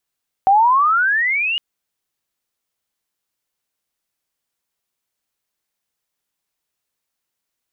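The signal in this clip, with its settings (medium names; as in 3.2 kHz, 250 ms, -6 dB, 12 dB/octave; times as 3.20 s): gliding synth tone sine, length 1.11 s, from 754 Hz, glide +23.5 st, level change -9 dB, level -8.5 dB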